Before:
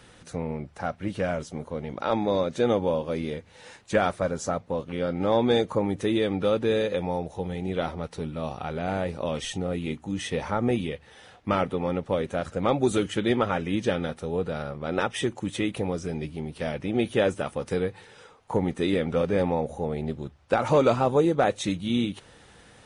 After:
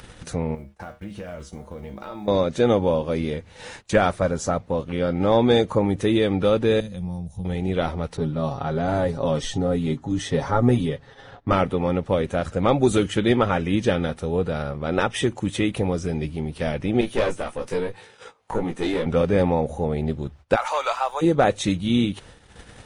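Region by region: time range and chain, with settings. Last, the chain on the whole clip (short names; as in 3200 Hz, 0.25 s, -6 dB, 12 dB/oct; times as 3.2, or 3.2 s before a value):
0.55–2.28 block floating point 7-bit + compressor 12:1, threshold -27 dBFS + resonator 68 Hz, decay 0.29 s, harmonics odd, mix 80%
6.8–7.45 EQ curve 210 Hz 0 dB, 330 Hz -23 dB, 640 Hz -17 dB, 2300 Hz -17 dB, 9200 Hz 0 dB + tube stage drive 24 dB, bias 0.35
8.17–11.53 low-pass opened by the level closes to 2800 Hz, open at -22.5 dBFS + bell 2500 Hz -9.5 dB 0.58 oct + comb 7.3 ms, depth 67%
17.01–19.06 HPF 240 Hz 6 dB/oct + tube stage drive 20 dB, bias 0.6 + doubler 18 ms -3 dB
20.55–21.21 HPF 770 Hz 24 dB/oct + added noise pink -65 dBFS
whole clip: gate -50 dBFS, range -21 dB; low shelf 70 Hz +11.5 dB; upward compressor, threshold -35 dBFS; gain +4 dB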